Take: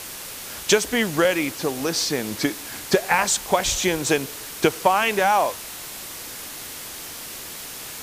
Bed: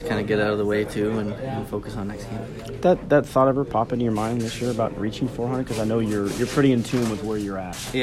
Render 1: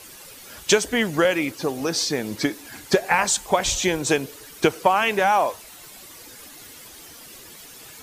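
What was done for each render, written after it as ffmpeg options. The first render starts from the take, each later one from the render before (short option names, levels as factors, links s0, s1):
-af "afftdn=nr=11:nf=-36"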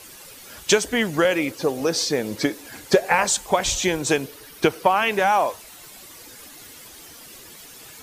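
-filter_complex "[0:a]asettb=1/sr,asplit=3[s0][s1][s2];[s0]atrim=end=1.314[s3];[s1]atrim=start=1.31:end=3.42,asetpts=PTS-STARTPTS,afade=t=in:d=0.004:c=qsin,afade=t=out:st=2.106:d=0.004:c=qsin,equalizer=f=510:w=2.8:g=6[s4];[s2]atrim=start=3.416[s5];[s3][s4]acrossfade=d=0.004:c1=hsin:c2=qsin[s6];[s6][s5]acrossfade=d=0.004:c1=qsin:c2=hsin,asettb=1/sr,asplit=3[s7][s8][s9];[s7]atrim=end=4.274[s10];[s8]atrim=start=4.27:end=5.12,asetpts=PTS-STARTPTS,afade=t=in:d=0.004:c=qsin,afade=t=out:st=0.846:d=0.004:c=qsin,equalizer=f=7300:t=o:w=0.45:g=-6[s11];[s9]atrim=start=5.116[s12];[s10][s11]acrossfade=d=0.004:c1=hsin:c2=qsin[s13];[s13][s12]acrossfade=d=0.004:c1=qsin:c2=hsin"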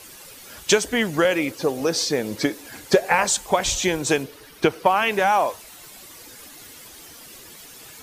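-filter_complex "[0:a]asettb=1/sr,asplit=3[s0][s1][s2];[s0]atrim=end=4.234[s3];[s1]atrim=start=4.23:end=4.86,asetpts=PTS-STARTPTS,afade=t=in:d=0.004:c=qsin,afade=t=out:st=0.626:d=0.004:c=qsin,highshelf=f=5900:g=-6.5[s4];[s2]atrim=start=4.856[s5];[s3][s4]acrossfade=d=0.004:c1=hsin:c2=qsin[s6];[s6][s5]acrossfade=d=0.004:c1=qsin:c2=hsin"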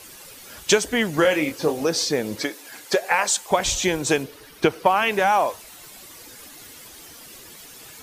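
-filter_complex "[0:a]asettb=1/sr,asplit=3[s0][s1][s2];[s0]atrim=end=1.154[s3];[s1]atrim=start=1.15:end=1.83,asetpts=PTS-STARTPTS,afade=t=in:d=0.004:c=qsin,afade=t=out:st=0.676:d=0.004:c=qsin,asplit=2[s4][s5];[s5]adelay=26,volume=0.501[s6];[s4][s6]amix=inputs=2:normalize=0,atrim=end_sample=29988[s7];[s2]atrim=start=1.826[s8];[s3][s7]acrossfade=d=0.004:c1=hsin:c2=qsin[s9];[s9][s8]acrossfade=d=0.004:c1=qsin:c2=hsin,asettb=1/sr,asplit=3[s10][s11][s12];[s10]atrim=end=2.424[s13];[s11]atrim=start=2.42:end=3.51,asetpts=PTS-STARTPTS,afade=t=in:d=0.004:c=qsin,afade=t=out:st=1.086:d=0.004:c=qsin,highpass=f=610:p=1[s14];[s12]atrim=start=3.506[s15];[s13][s14]acrossfade=d=0.004:c1=hsin:c2=qsin[s16];[s16][s15]acrossfade=d=0.004:c1=qsin:c2=hsin"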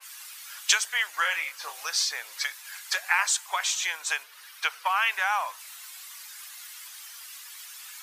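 -af "highpass=f=1100:w=0.5412,highpass=f=1100:w=1.3066,adynamicequalizer=threshold=0.0126:dfrequency=2300:dqfactor=0.7:tfrequency=2300:tqfactor=0.7:attack=5:release=100:ratio=0.375:range=3:mode=cutabove:tftype=highshelf"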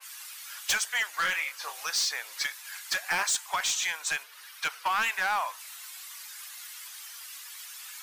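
-af "volume=13.3,asoftclip=hard,volume=0.075"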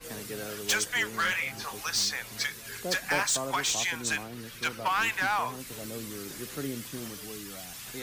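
-filter_complex "[1:a]volume=0.133[s0];[0:a][s0]amix=inputs=2:normalize=0"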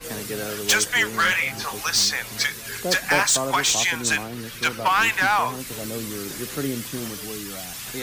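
-af "volume=2.51"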